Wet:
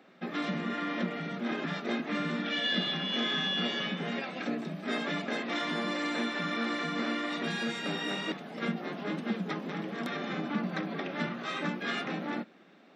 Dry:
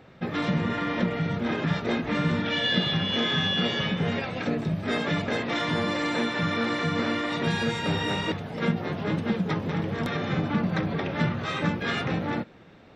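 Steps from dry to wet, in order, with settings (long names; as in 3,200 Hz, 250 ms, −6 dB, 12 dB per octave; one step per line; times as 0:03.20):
Butterworth high-pass 190 Hz 36 dB per octave
parametric band 480 Hz −6 dB 0.26 octaves
notch filter 920 Hz, Q 12
level −4.5 dB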